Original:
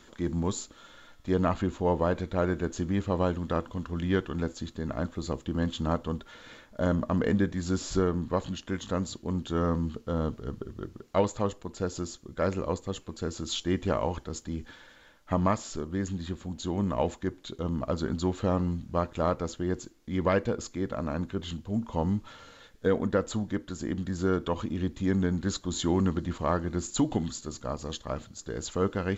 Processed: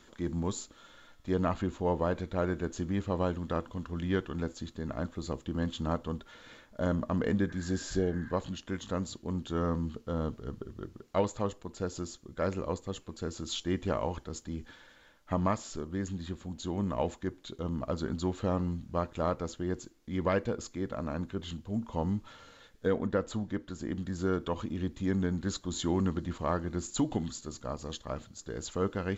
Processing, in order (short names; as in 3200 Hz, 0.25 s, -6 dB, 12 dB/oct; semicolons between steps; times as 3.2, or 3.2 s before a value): 7.52–8.29 spectral repair 820–2100 Hz before; 22.94–23.92 high shelf 6500 Hz -7 dB; gain -3.5 dB